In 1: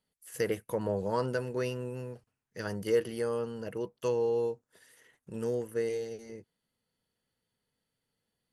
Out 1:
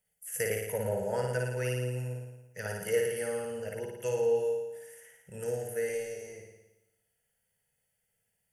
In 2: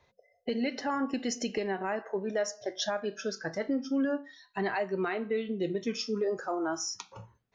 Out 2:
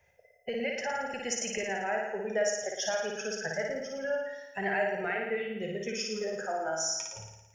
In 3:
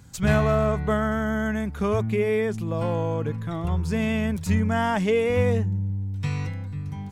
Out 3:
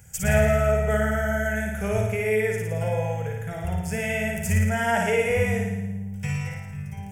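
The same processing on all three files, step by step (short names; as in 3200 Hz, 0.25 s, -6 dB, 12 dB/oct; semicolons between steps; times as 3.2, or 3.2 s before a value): high shelf 3100 Hz +10 dB; fixed phaser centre 1100 Hz, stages 6; on a send: flutter echo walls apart 9.6 m, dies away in 1 s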